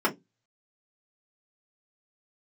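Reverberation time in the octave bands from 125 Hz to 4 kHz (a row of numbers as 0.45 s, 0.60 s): 0.40 s, 0.25 s, 0.20 s, 0.15 s, 0.10 s, 0.15 s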